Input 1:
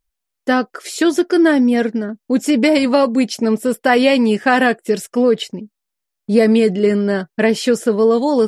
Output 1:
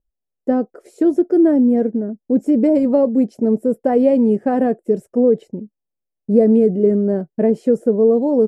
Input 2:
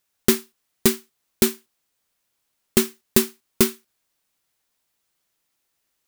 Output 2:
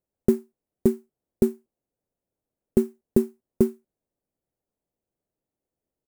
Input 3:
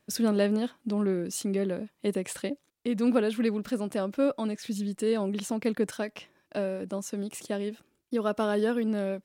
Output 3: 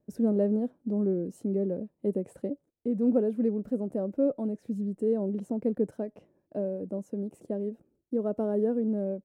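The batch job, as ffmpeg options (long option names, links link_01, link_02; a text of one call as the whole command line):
ffmpeg -i in.wav -af "firequalizer=gain_entry='entry(540,0);entry(1100,-17);entry(3400,-30);entry(8000,-21)':delay=0.05:min_phase=1" out.wav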